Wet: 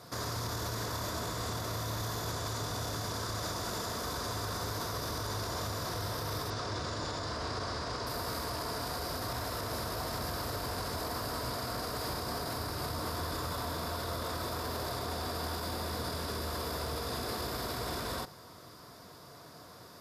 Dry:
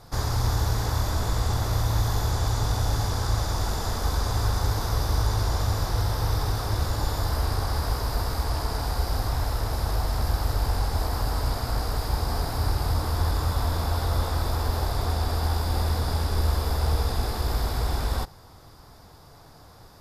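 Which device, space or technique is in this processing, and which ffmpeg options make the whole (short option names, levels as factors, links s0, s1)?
PA system with an anti-feedback notch: -filter_complex "[0:a]highpass=160,asuperstop=centerf=820:order=4:qfactor=6,alimiter=level_in=1.68:limit=0.0631:level=0:latency=1:release=42,volume=0.596,asettb=1/sr,asplit=3[s0][s1][s2];[s0]atrim=end=6.504[s3];[s1]atrim=start=6.5:end=8.07,asetpts=PTS-STARTPTS,afade=t=in:d=0.004:c=qsin,afade=t=out:st=1.566:d=0.004:c=qsin,lowpass=f=7200:w=0.5412,lowpass=f=7200:w=1.3066[s4];[s2]atrim=start=8.066[s5];[s3][s4]acrossfade=d=0.004:c1=hsin:c2=qsin[s6];[s6][s5]acrossfade=d=0.004:c1=qsin:c2=hsin,volume=1.12"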